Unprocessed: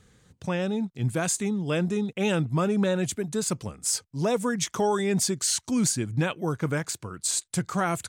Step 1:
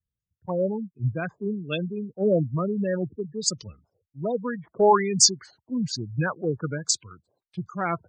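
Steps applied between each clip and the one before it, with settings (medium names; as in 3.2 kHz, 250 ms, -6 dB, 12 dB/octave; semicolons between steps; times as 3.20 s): LFO low-pass sine 1.2 Hz 540–6200 Hz; spectral gate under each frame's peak -15 dB strong; three bands expanded up and down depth 100%; trim -2 dB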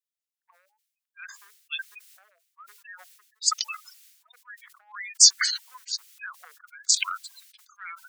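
Bessel high-pass 2.7 kHz, order 8; decay stretcher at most 62 dB/s; trim +2.5 dB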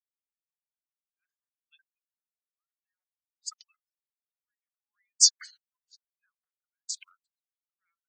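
upward expansion 2.5:1, over -44 dBFS; trim -2.5 dB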